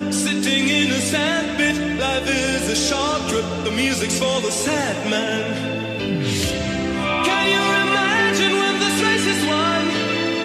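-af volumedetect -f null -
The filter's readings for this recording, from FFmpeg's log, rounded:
mean_volume: -19.8 dB
max_volume: -5.2 dB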